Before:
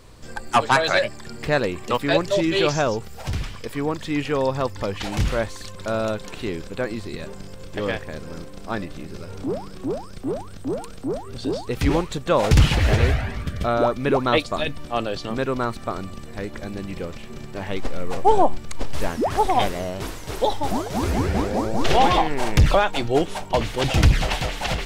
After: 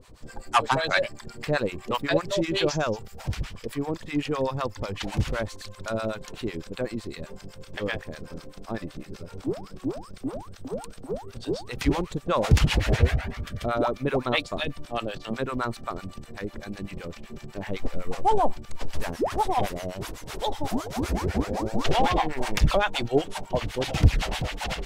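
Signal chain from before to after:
two-band tremolo in antiphase 7.9 Hz, depth 100%, crossover 690 Hz

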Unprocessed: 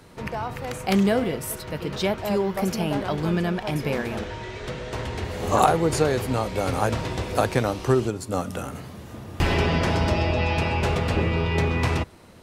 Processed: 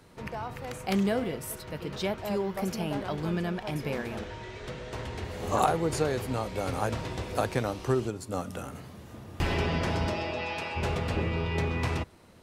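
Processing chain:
0:10.10–0:10.75: high-pass filter 200 Hz → 780 Hz 6 dB per octave
level −6.5 dB

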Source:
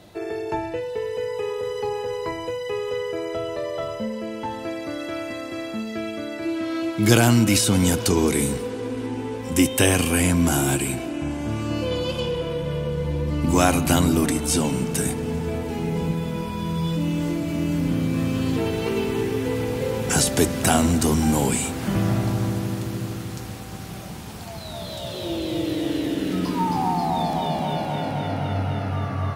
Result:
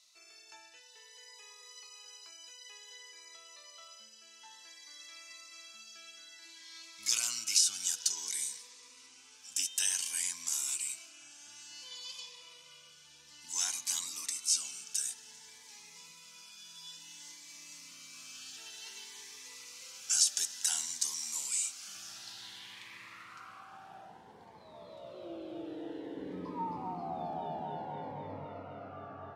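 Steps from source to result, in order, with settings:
low shelf with overshoot 740 Hz −8.5 dB, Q 1.5
band-pass filter sweep 6,000 Hz → 490 Hz, 0:22.07–0:24.34
0:26.17–0:28.45: parametric band 76 Hz +10.5 dB 2.1 octaves
phaser whose notches keep moving one way rising 0.56 Hz

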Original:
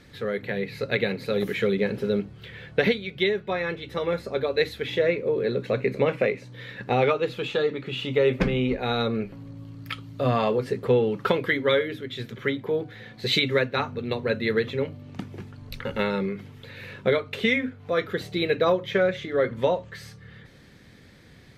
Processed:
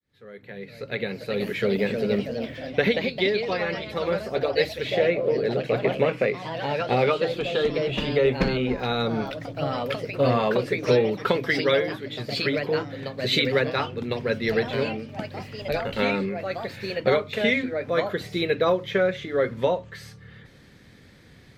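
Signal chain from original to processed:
fade in at the beginning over 1.72 s
delay with pitch and tempo change per echo 486 ms, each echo +2 semitones, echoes 3, each echo −6 dB

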